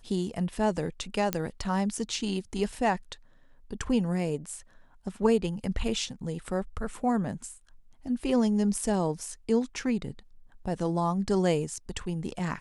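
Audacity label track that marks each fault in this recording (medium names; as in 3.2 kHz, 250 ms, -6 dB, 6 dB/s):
1.330000	1.330000	pop -11 dBFS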